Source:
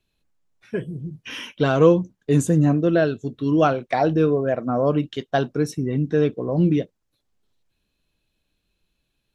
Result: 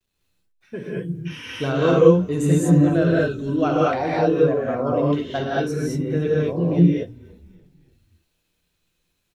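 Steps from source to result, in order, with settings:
pitch vibrato 0.54 Hz 32 cents
bit-depth reduction 12 bits, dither none
echo with shifted repeats 292 ms, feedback 56%, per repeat −51 Hz, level −24 dB
reverb whose tail is shaped and stops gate 250 ms rising, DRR −6 dB
level −6.5 dB

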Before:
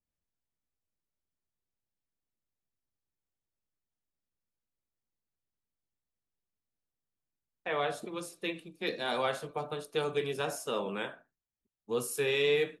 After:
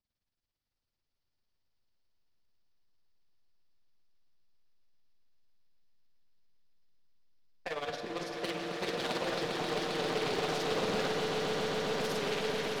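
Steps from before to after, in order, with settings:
high shelf with overshoot 6,400 Hz −10 dB, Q 3
compressor whose output falls as the input rises −33 dBFS, ratio −1
gain into a clipping stage and back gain 32 dB
amplitude tremolo 18 Hz, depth 79%
echo that builds up and dies away 133 ms, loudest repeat 8, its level −7 dB
convolution reverb RT60 4.2 s, pre-delay 21 ms, DRR 6 dB
highs frequency-modulated by the lows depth 0.54 ms
level +1.5 dB

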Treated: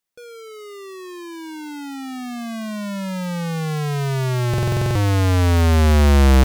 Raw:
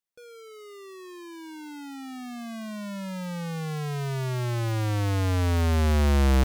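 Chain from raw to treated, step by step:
buffer that repeats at 0:04.49, samples 2,048, times 9
level +8 dB

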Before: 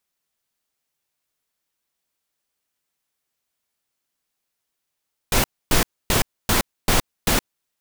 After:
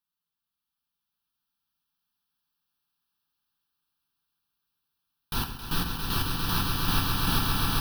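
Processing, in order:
phaser with its sweep stopped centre 2,100 Hz, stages 6
echo that builds up and dies away 134 ms, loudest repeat 8, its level −5 dB
on a send at −4.5 dB: convolution reverb RT60 0.80 s, pre-delay 3 ms
on the sum: level −8.5 dB

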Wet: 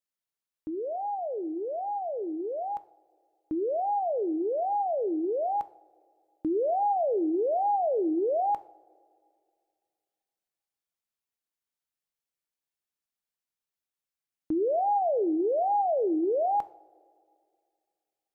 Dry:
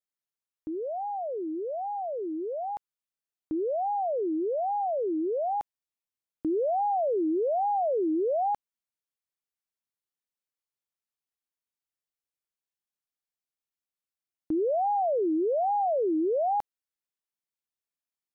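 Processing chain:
coupled-rooms reverb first 0.43 s, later 2.3 s, from −20 dB, DRR 12.5 dB

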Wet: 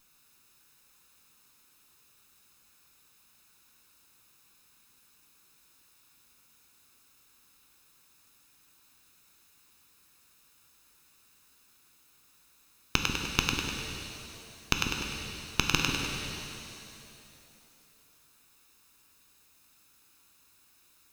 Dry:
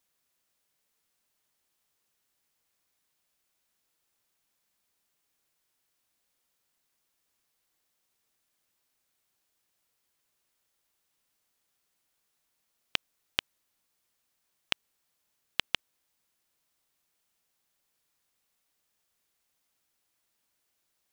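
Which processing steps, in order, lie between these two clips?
lower of the sound and its delayed copy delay 0.78 ms
echo with a time of its own for lows and highs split 410 Hz, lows 143 ms, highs 100 ms, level −12 dB
boost into a limiter +15 dB
reverb with rising layers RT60 2.7 s, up +7 semitones, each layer −8 dB, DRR 2.5 dB
level −1 dB

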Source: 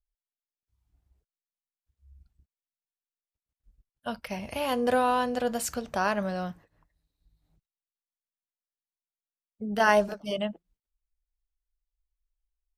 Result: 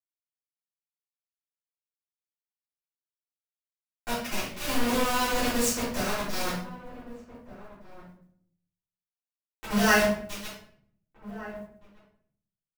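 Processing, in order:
rotating-speaker cabinet horn 0.9 Hz, later 7 Hz, at 0:08.60
dynamic equaliser 1,000 Hz, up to −4 dB, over −40 dBFS, Q 0.76
sample-and-hold tremolo 3.5 Hz, depth 55%
parametric band 6,300 Hz +8.5 dB 0.76 octaves
hum removal 72.46 Hz, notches 18
flanger 0.44 Hz, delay 9.6 ms, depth 7.3 ms, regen 0%
bit reduction 6 bits
slap from a distant wall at 260 metres, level −15 dB
convolution reverb RT60 0.60 s, pre-delay 3 ms, DRR −12.5 dB
noise that follows the level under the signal 31 dB
level −3 dB

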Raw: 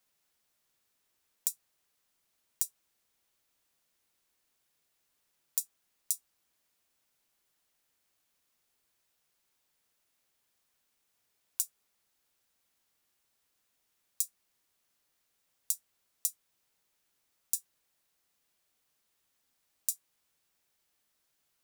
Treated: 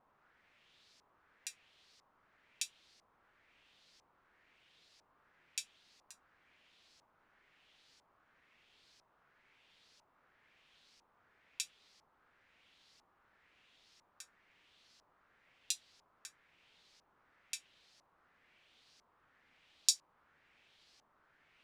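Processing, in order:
pitch vibrato 3 Hz 43 cents
auto-filter low-pass saw up 1 Hz 930–5,300 Hz
level +11 dB

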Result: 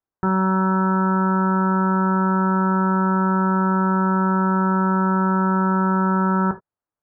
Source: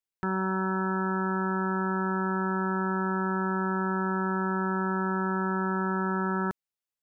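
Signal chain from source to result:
low-pass filter 1,400 Hz 24 dB per octave
reverb whose tail is shaped and stops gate 100 ms falling, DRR 6 dB
level +9 dB

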